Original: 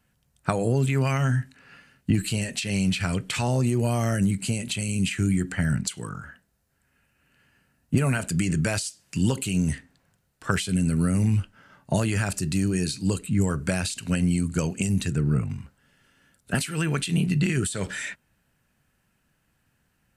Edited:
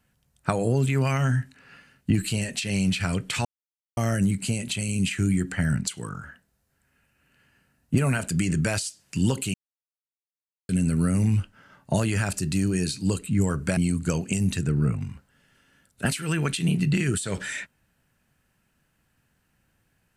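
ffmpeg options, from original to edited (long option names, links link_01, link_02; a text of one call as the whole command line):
ffmpeg -i in.wav -filter_complex "[0:a]asplit=6[link_01][link_02][link_03][link_04][link_05][link_06];[link_01]atrim=end=3.45,asetpts=PTS-STARTPTS,afade=type=out:start_time=3.446:duration=0.004:curve=hsin[link_07];[link_02]atrim=start=3.45:end=3.97,asetpts=PTS-STARTPTS,volume=0[link_08];[link_03]atrim=start=3.97:end=9.54,asetpts=PTS-STARTPTS,afade=type=in:duration=0.004:curve=hsin,afade=type=out:start_time=5.566:duration=0.004:curve=hsin[link_09];[link_04]atrim=start=9.54:end=10.69,asetpts=PTS-STARTPTS,volume=0[link_10];[link_05]atrim=start=10.69:end=13.772,asetpts=PTS-STARTPTS,afade=type=in:duration=0.004:curve=hsin[link_11];[link_06]atrim=start=14.258[link_12];[link_07][link_08][link_09][link_10][link_11]concat=n=5:v=0:a=1[link_13];[link_13][link_12]acrossfade=duration=0.004:curve1=hsin:curve2=hsin" out.wav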